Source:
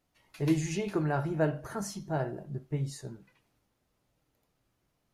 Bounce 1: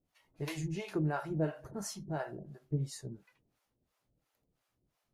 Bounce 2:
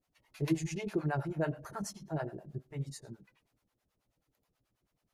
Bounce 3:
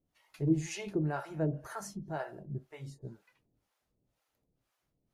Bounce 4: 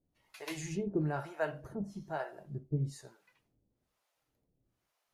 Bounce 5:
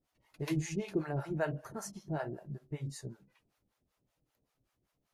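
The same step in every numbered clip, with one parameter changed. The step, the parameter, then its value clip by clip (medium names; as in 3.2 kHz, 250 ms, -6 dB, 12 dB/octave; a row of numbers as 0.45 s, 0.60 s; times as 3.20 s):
harmonic tremolo, rate: 2.9 Hz, 9.3 Hz, 2 Hz, 1.1 Hz, 5.2 Hz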